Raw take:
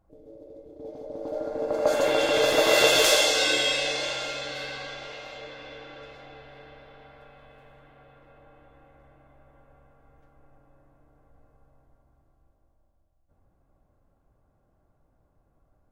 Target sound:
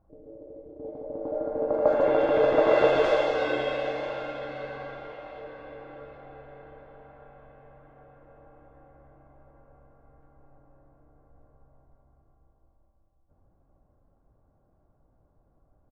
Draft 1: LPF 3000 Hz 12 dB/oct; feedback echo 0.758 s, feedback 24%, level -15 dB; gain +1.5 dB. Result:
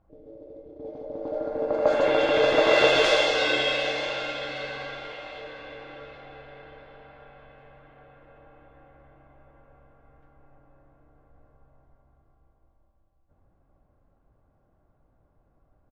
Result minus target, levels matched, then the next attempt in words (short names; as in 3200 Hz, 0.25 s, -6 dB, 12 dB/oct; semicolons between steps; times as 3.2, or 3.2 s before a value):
4000 Hz band +12.0 dB
LPF 1200 Hz 12 dB/oct; feedback echo 0.758 s, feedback 24%, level -15 dB; gain +1.5 dB